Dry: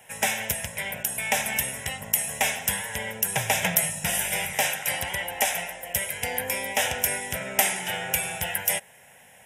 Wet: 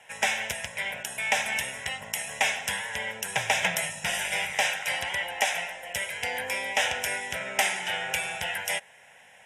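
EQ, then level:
high-frequency loss of the air 76 metres
low-shelf EQ 460 Hz −12 dB
+2.5 dB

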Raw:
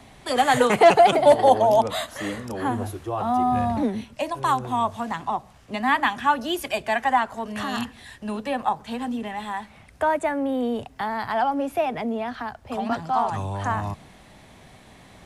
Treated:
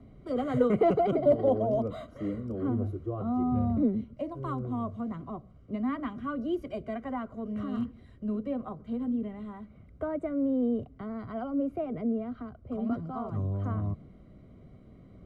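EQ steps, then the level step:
moving average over 51 samples
0.0 dB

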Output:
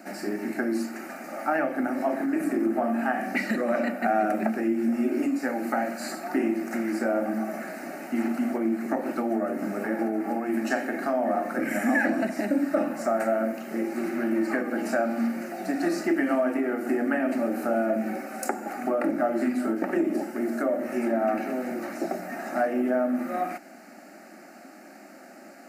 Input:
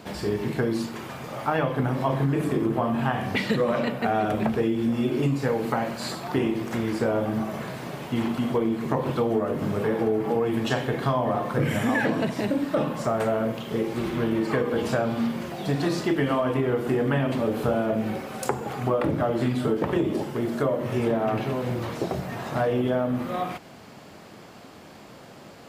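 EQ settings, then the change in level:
high-pass filter 200 Hz 24 dB per octave
phaser with its sweep stopped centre 680 Hz, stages 8
+2.0 dB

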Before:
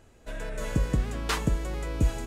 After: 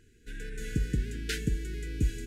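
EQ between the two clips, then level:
linear-phase brick-wall band-stop 480–1,400 Hz
−3.5 dB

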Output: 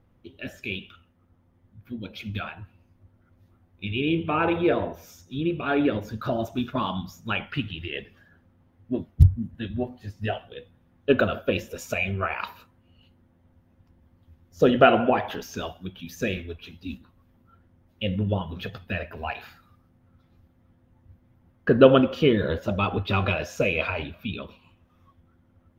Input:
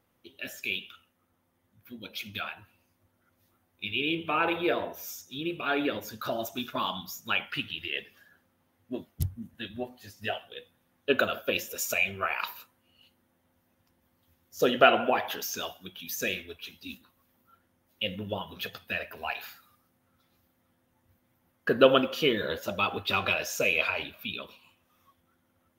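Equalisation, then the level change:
RIAA equalisation playback
+2.5 dB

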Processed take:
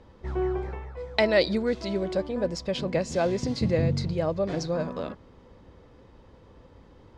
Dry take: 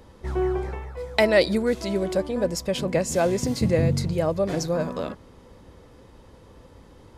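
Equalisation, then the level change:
dynamic equaliser 4,400 Hz, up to +6 dB, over −45 dBFS, Q 1.5
high-frequency loss of the air 110 metres
−3.0 dB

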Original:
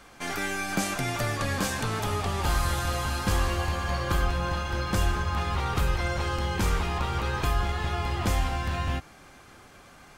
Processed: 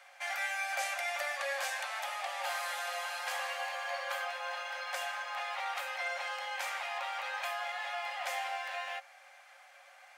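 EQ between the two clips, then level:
Chebyshev high-pass with heavy ripple 530 Hz, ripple 9 dB
0.0 dB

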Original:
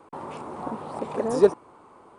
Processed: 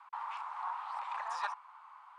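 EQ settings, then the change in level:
Butterworth high-pass 890 Hz 48 dB per octave
low-pass filter 3,600 Hz 6 dB per octave
high-frequency loss of the air 88 metres
+1.5 dB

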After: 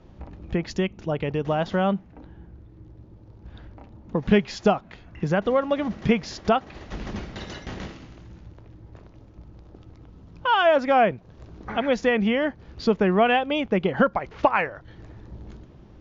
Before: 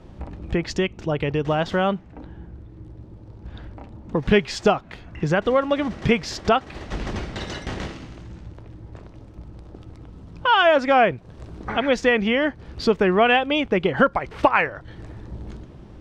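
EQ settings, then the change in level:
dynamic equaliser 200 Hz, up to +7 dB, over −38 dBFS, Q 2.5
dynamic equaliser 680 Hz, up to +4 dB, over −29 dBFS, Q 1
linear-phase brick-wall low-pass 7,300 Hz
−5.5 dB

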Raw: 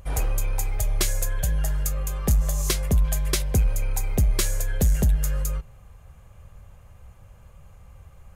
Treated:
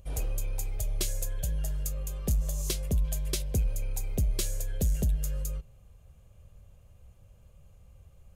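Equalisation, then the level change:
flat-topped bell 1,300 Hz −8 dB
−7.0 dB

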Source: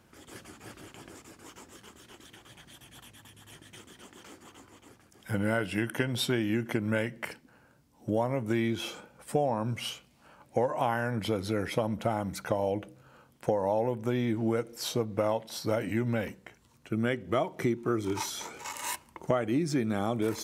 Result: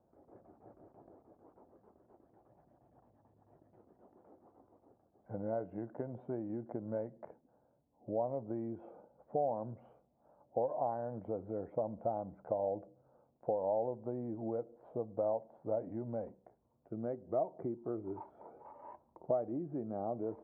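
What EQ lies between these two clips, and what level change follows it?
transistor ladder low-pass 800 Hz, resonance 50%
high-frequency loss of the air 290 metres
low-shelf EQ 350 Hz −6 dB
+1.0 dB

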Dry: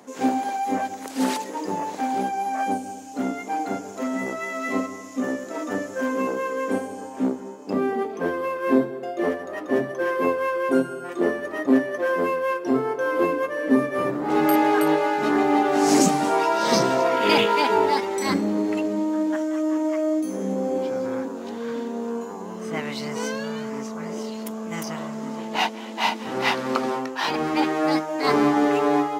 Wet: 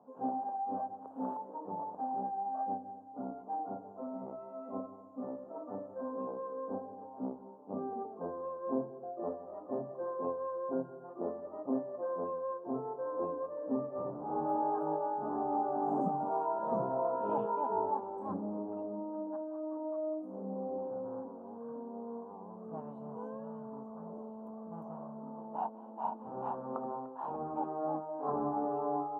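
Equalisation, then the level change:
inverse Chebyshev low-pass filter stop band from 1,900 Hz, stop band 40 dB
low-shelf EQ 220 Hz −5 dB
parametric band 340 Hz −9.5 dB 1.1 octaves
−7.5 dB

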